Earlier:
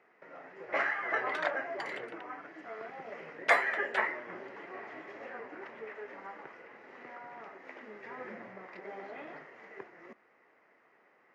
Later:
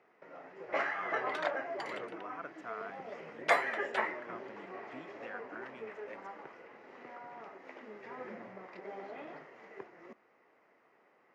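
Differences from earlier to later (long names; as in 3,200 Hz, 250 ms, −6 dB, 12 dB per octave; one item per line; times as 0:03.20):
speech +9.5 dB
master: add parametric band 1,800 Hz −5 dB 0.81 octaves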